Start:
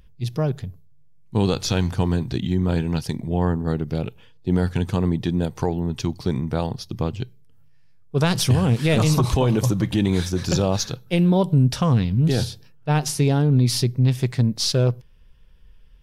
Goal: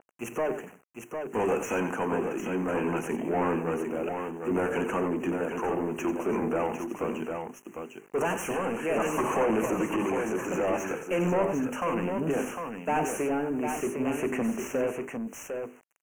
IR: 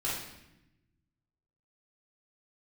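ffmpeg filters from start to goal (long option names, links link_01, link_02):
-filter_complex "[0:a]highpass=frequency=230:width=0.5412,highpass=frequency=230:width=1.3066,equalizer=frequency=2000:width=3.4:gain=-6.5,bandreject=frequency=50:width_type=h:width=6,bandreject=frequency=100:width_type=h:width=6,bandreject=frequency=150:width_type=h:width=6,bandreject=frequency=200:width_type=h:width=6,bandreject=frequency=250:width_type=h:width=6,bandreject=frequency=300:width_type=h:width=6,bandreject=frequency=350:width_type=h:width=6,bandreject=frequency=400:width_type=h:width=6,bandreject=frequency=450:width_type=h:width=6,asoftclip=type=tanh:threshold=-20.5dB,tremolo=f=0.63:d=0.59,acrusher=bits=9:mix=0:aa=0.000001,asplit=2[link_01][link_02];[link_02]highpass=frequency=720:poles=1,volume=21dB,asoftclip=type=tanh:threshold=-20.5dB[link_03];[link_01][link_03]amix=inputs=2:normalize=0,lowpass=frequency=4300:poles=1,volume=-6dB,asuperstop=centerf=4200:order=12:qfactor=1.3,asplit=2[link_04][link_05];[link_05]aecho=0:1:91|753:0.299|0.501[link_06];[link_04][link_06]amix=inputs=2:normalize=0,adynamicequalizer=threshold=0.00355:dfrequency=3400:dqfactor=0.7:tfrequency=3400:tqfactor=0.7:attack=5:release=100:ratio=0.375:range=4:mode=cutabove:tftype=highshelf"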